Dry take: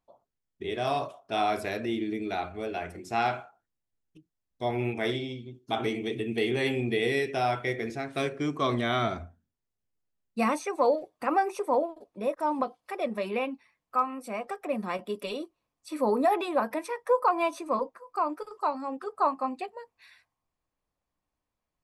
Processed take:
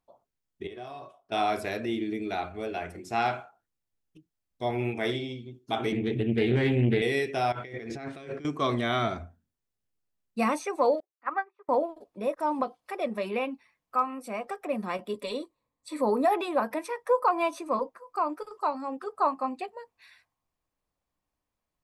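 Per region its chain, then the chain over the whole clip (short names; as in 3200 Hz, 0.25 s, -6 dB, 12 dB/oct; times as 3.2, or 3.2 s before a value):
0.67–1.32 high shelf 3500 Hz -5.5 dB + compressor 2.5:1, threshold -30 dBFS + resonator 370 Hz, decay 0.26 s, mix 70%
5.92–7.02 tone controls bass +11 dB, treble -11 dB + Doppler distortion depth 0.29 ms
7.52–8.45 negative-ratio compressor -39 dBFS + air absorption 57 m
11–11.69 speaker cabinet 470–3200 Hz, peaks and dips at 500 Hz -10 dB, 730 Hz -6 dB, 1200 Hz +5 dB, 1800 Hz +5 dB, 2700 Hz -10 dB + upward expander 2.5:1, over -45 dBFS
15.13–16.02 ripple EQ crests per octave 1, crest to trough 8 dB + mismatched tape noise reduction decoder only
whole clip: dry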